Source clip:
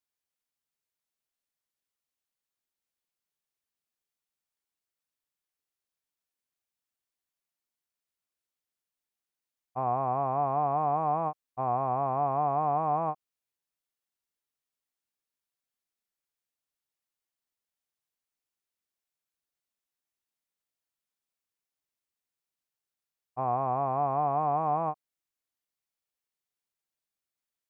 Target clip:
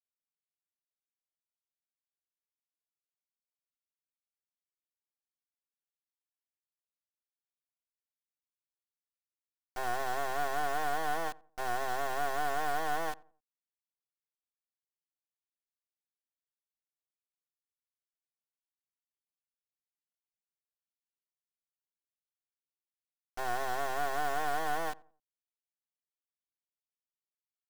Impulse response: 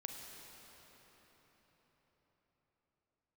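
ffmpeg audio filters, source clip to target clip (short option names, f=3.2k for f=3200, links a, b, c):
-filter_complex "[0:a]acrusher=bits=4:dc=4:mix=0:aa=0.000001,asplit=2[a][b];[b]adelay=88,lowpass=f=1.1k:p=1,volume=-21.5dB,asplit=2[c][d];[d]adelay=88,lowpass=f=1.1k:p=1,volume=0.37,asplit=2[e][f];[f]adelay=88,lowpass=f=1.1k:p=1,volume=0.37[g];[c][e][g]amix=inputs=3:normalize=0[h];[a][h]amix=inputs=2:normalize=0"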